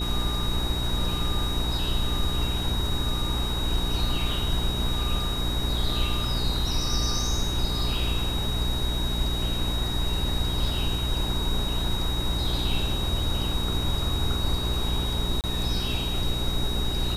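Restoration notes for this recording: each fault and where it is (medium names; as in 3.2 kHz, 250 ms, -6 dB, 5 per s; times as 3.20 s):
hum 60 Hz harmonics 7 -30 dBFS
whine 3.8 kHz -31 dBFS
15.41–15.44 s: dropout 28 ms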